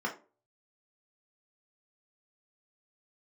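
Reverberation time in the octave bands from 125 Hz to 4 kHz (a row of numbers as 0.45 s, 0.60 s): 0.35 s, 0.40 s, 0.40 s, 0.30 s, 0.25 s, 0.20 s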